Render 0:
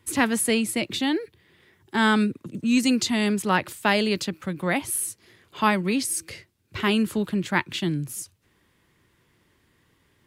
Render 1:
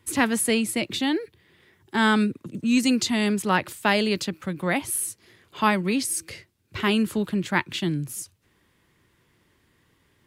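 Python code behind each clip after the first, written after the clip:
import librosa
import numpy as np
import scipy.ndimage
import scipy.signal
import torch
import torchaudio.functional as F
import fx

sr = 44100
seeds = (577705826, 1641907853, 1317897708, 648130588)

y = x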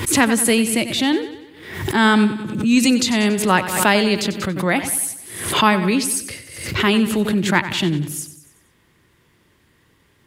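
y = fx.echo_feedback(x, sr, ms=94, feedback_pct=51, wet_db=-12.5)
y = fx.pre_swell(y, sr, db_per_s=68.0)
y = y * 10.0 ** (5.5 / 20.0)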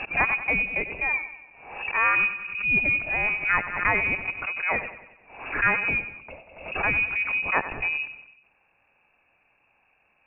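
y = fx.freq_invert(x, sr, carrier_hz=2700)
y = fx.air_absorb(y, sr, metres=190.0)
y = y * 10.0 ** (-5.5 / 20.0)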